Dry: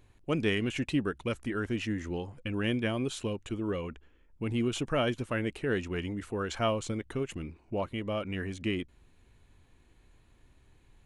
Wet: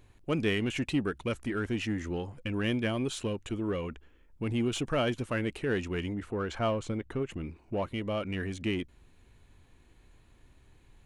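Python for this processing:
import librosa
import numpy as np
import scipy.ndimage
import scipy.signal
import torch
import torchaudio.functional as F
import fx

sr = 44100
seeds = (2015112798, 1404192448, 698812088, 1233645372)

p1 = fx.high_shelf(x, sr, hz=3400.0, db=-10.5, at=(6.14, 7.44))
p2 = 10.0 ** (-33.5 / 20.0) * np.tanh(p1 / 10.0 ** (-33.5 / 20.0))
p3 = p1 + (p2 * 10.0 ** (-6.0 / 20.0))
y = p3 * 10.0 ** (-1.5 / 20.0)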